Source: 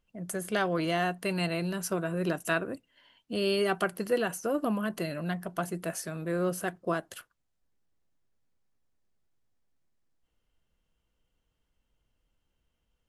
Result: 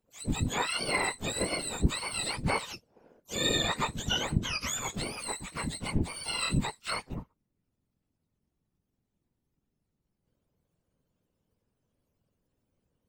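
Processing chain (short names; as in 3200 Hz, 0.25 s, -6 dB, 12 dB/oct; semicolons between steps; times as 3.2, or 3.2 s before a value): spectrum mirrored in octaves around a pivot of 1200 Hz; whisperiser; harmoniser -12 st -7 dB, +3 st -13 dB, +12 st -16 dB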